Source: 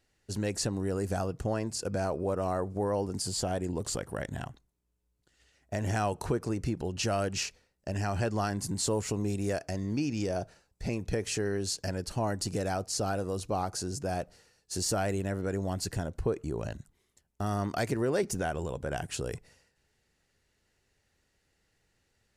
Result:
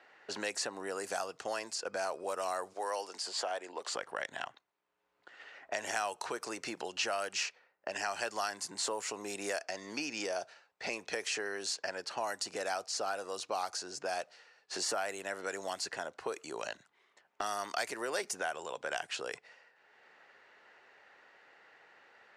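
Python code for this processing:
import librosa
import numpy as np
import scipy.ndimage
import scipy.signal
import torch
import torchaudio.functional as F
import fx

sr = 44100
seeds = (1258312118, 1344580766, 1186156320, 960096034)

y = fx.highpass(x, sr, hz=380.0, slope=12, at=(2.73, 3.94))
y = fx.env_lowpass(y, sr, base_hz=1600.0, full_db=-25.5)
y = scipy.signal.sosfilt(scipy.signal.butter(2, 810.0, 'highpass', fs=sr, output='sos'), y)
y = fx.band_squash(y, sr, depth_pct=70)
y = y * librosa.db_to_amplitude(2.0)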